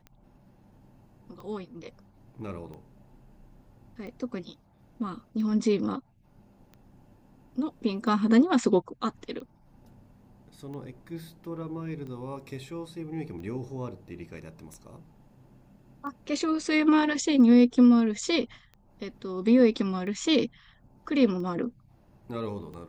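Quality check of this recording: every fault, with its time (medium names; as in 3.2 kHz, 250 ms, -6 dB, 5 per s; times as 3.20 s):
tick 45 rpm -32 dBFS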